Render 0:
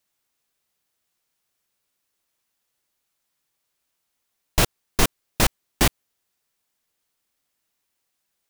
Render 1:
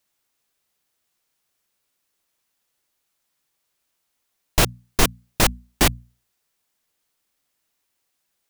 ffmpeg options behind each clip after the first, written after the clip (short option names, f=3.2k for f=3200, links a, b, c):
-af "bandreject=f=60:t=h:w=6,bandreject=f=120:t=h:w=6,bandreject=f=180:t=h:w=6,bandreject=f=240:t=h:w=6,volume=2dB"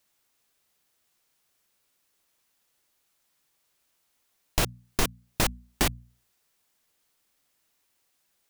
-af "acompressor=threshold=-31dB:ratio=2,volume=2dB"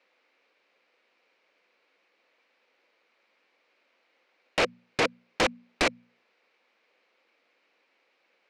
-af "acrusher=bits=11:mix=0:aa=0.000001,highpass=f=250:w=0.5412,highpass=f=250:w=1.3066,equalizer=f=510:t=q:w=4:g=9,equalizer=f=2.3k:t=q:w=4:g=7,equalizer=f=3.4k:t=q:w=4:g=-6,lowpass=f=3.8k:w=0.5412,lowpass=f=3.8k:w=1.3066,aeval=exprs='0.282*sin(PI/2*3.55*val(0)/0.282)':c=same,volume=-7.5dB"